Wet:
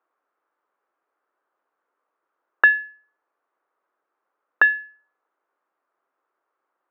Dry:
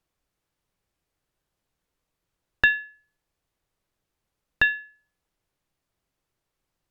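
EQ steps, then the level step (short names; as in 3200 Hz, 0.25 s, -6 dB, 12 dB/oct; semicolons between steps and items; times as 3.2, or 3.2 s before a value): HPF 340 Hz 24 dB/oct; synth low-pass 1300 Hz, resonance Q 2.7; +4.0 dB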